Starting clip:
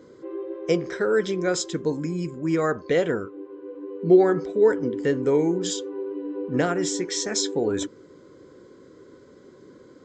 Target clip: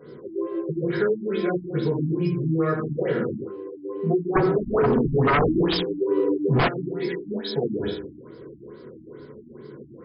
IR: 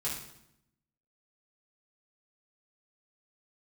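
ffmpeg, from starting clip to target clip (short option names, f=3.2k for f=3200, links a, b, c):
-filter_complex "[0:a]highshelf=f=6.4k:g=12,bandreject=f=50:t=h:w=6,bandreject=f=100:t=h:w=6[a];[1:a]atrim=start_sample=2205,afade=t=out:st=0.37:d=0.01,atrim=end_sample=16758[b];[a][b]afir=irnorm=-1:irlink=0,asplit=3[c][d][e];[c]afade=t=out:st=4.35:d=0.02[f];[d]aeval=exprs='0.841*sin(PI/2*6.31*val(0)/0.841)':c=same,afade=t=in:st=4.35:d=0.02,afade=t=out:st=6.67:d=0.02[g];[e]afade=t=in:st=6.67:d=0.02[h];[f][g][h]amix=inputs=3:normalize=0,acompressor=threshold=-22dB:ratio=6,afftfilt=real='re*lt(b*sr/1024,320*pow(5300/320,0.5+0.5*sin(2*PI*2.3*pts/sr)))':imag='im*lt(b*sr/1024,320*pow(5300/320,0.5+0.5*sin(2*PI*2.3*pts/sr)))':win_size=1024:overlap=0.75,volume=2.5dB"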